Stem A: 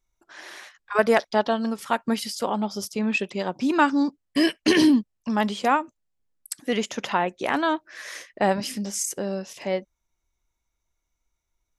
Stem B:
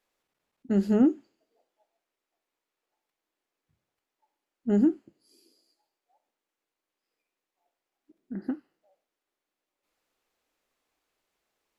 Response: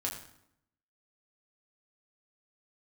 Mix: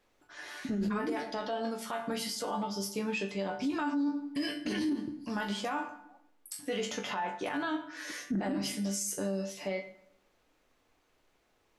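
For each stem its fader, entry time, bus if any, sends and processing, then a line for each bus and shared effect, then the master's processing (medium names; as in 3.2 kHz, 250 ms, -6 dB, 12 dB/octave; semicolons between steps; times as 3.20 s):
+2.0 dB, 0.00 s, send -4.5 dB, compression, threshold -20 dBFS, peak gain reduction 7.5 dB; chord resonator G2 fifth, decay 0.21 s
-1.5 dB, 0.00 s, send -10.5 dB, treble shelf 5.9 kHz -9.5 dB; compressor with a negative ratio -32 dBFS, ratio -1; bass shelf 260 Hz +7 dB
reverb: on, RT60 0.75 s, pre-delay 5 ms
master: peak limiter -25 dBFS, peak gain reduction 11.5 dB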